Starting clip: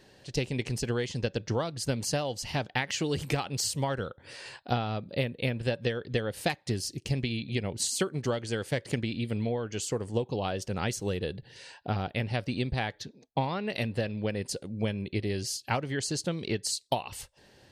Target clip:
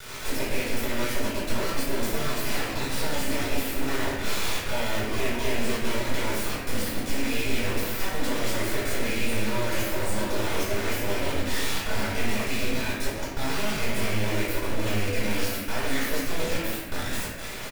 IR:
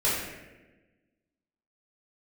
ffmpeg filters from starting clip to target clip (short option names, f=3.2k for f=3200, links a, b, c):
-filter_complex "[0:a]equalizer=f=125:t=o:w=1:g=5,equalizer=f=250:t=o:w=1:g=-8,equalizer=f=500:t=o:w=1:g=6,equalizer=f=1k:t=o:w=1:g=4,equalizer=f=2k:t=o:w=1:g=7,equalizer=f=4k:t=o:w=1:g=-3,equalizer=f=8k:t=o:w=1:g=5,dynaudnorm=f=960:g=5:m=11.5dB,alimiter=level_in=6.5dB:limit=-24dB:level=0:latency=1:release=171,volume=-6.5dB,acrossover=split=100|1900[a][b][c];[a]acompressor=threshold=-55dB:ratio=4[d];[b]acompressor=threshold=-48dB:ratio=4[e];[c]acompressor=threshold=-51dB:ratio=4[f];[d][e][f]amix=inputs=3:normalize=0,aeval=exprs='abs(val(0))':c=same,acrusher=bits=7:mix=0:aa=0.000001,asplit=2[g][h];[h]adelay=18,volume=-13dB[i];[g][i]amix=inputs=2:normalize=0[j];[1:a]atrim=start_sample=2205[k];[j][k]afir=irnorm=-1:irlink=0,volume=7dB"